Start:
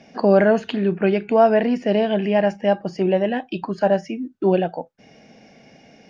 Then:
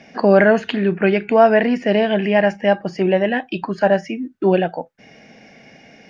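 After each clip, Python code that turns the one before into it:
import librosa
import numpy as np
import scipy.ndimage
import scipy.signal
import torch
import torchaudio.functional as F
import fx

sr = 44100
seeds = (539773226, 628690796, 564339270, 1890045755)

y = fx.peak_eq(x, sr, hz=1900.0, db=7.0, octaves=0.98)
y = y * 10.0 ** (2.0 / 20.0)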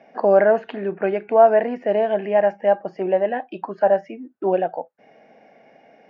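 y = fx.bandpass_q(x, sr, hz=680.0, q=1.3)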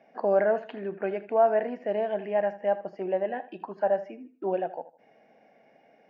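y = fx.echo_feedback(x, sr, ms=79, feedback_pct=32, wet_db=-16)
y = y * 10.0 ** (-8.5 / 20.0)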